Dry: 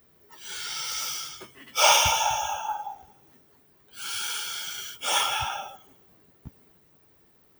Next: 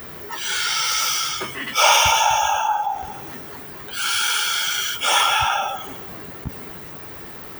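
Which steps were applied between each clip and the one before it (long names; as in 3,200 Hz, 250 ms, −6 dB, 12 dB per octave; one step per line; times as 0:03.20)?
parametric band 1,500 Hz +5.5 dB 2.1 octaves
envelope flattener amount 50%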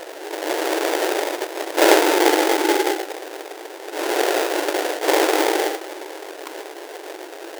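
sample-rate reduction 1,200 Hz, jitter 20%
linear-phase brick-wall high-pass 300 Hz
level +4 dB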